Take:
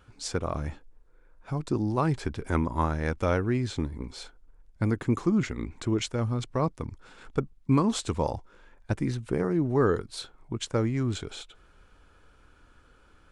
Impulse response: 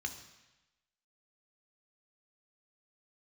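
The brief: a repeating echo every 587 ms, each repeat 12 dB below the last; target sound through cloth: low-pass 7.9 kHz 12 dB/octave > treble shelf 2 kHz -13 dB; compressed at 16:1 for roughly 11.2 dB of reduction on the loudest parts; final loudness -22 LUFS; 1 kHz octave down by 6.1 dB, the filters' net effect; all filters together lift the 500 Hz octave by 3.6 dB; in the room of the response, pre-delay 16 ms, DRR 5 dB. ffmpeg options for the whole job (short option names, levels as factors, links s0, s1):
-filter_complex "[0:a]equalizer=f=500:t=o:g=6.5,equalizer=f=1000:t=o:g=-6,acompressor=threshold=0.0447:ratio=16,aecho=1:1:587|1174|1761:0.251|0.0628|0.0157,asplit=2[s0][s1];[1:a]atrim=start_sample=2205,adelay=16[s2];[s1][s2]afir=irnorm=-1:irlink=0,volume=0.531[s3];[s0][s3]amix=inputs=2:normalize=0,lowpass=7900,highshelf=f=2000:g=-13,volume=3.98"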